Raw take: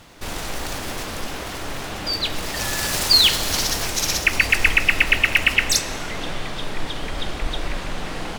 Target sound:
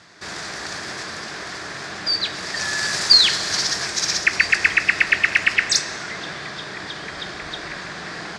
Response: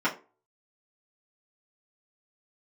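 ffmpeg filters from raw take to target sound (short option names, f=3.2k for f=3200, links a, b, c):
-af "highpass=160,equalizer=f=260:t=q:w=4:g=-10,equalizer=f=520:t=q:w=4:g=-7,equalizer=f=860:t=q:w=4:g=-5,equalizer=f=1.7k:t=q:w=4:g=7,equalizer=f=2.9k:t=q:w=4:g=-7,equalizer=f=4.8k:t=q:w=4:g=5,lowpass=f=7.7k:w=0.5412,lowpass=f=7.7k:w=1.3066,aeval=exprs='0.891*(cos(1*acos(clip(val(0)/0.891,-1,1)))-cos(1*PI/2))+0.0126*(cos(4*acos(clip(val(0)/0.891,-1,1)))-cos(4*PI/2))':c=same"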